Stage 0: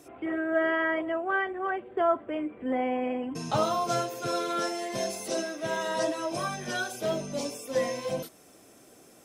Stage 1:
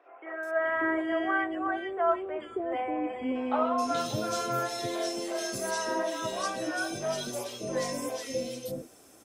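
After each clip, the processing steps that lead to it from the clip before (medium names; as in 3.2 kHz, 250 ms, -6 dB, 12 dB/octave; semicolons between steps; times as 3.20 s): peaking EQ 170 Hz -12.5 dB 0.3 oct; three bands offset in time mids, highs, lows 430/590 ms, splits 510/2300 Hz; trim +1 dB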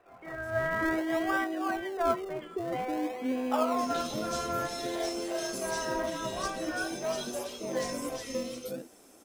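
high-pass 170 Hz 24 dB/octave; in parallel at -10 dB: decimation with a swept rate 39×, swing 100% 0.51 Hz; on the sum: trim -2 dB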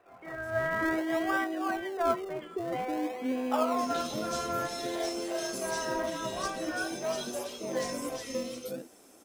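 bass shelf 62 Hz -7 dB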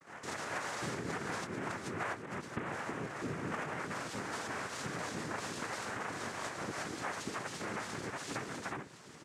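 compression 5:1, threshold -42 dBFS, peak gain reduction 17.5 dB; vibrato 0.48 Hz 31 cents; noise-vocoded speech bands 3; trim +4 dB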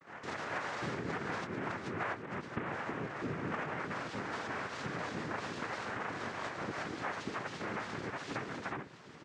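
low-pass 4 kHz 12 dB/octave; trim +1 dB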